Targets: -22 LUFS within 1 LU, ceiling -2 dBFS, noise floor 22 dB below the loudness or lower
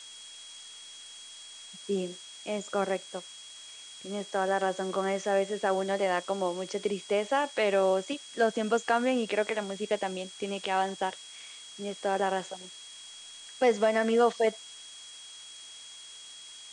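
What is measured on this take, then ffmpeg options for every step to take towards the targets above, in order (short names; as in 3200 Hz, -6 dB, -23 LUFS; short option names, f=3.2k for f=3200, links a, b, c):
steady tone 3300 Hz; tone level -47 dBFS; noise floor -47 dBFS; noise floor target -52 dBFS; loudness -29.5 LUFS; peak -12.5 dBFS; loudness target -22.0 LUFS
-> -af "bandreject=f=3.3k:w=30"
-af "afftdn=nr=6:nf=-47"
-af "volume=7.5dB"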